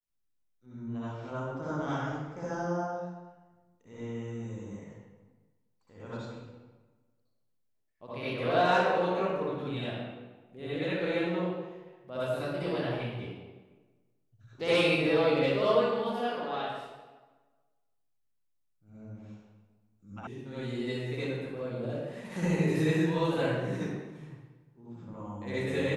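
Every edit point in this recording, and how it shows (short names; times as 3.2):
20.27 sound cut off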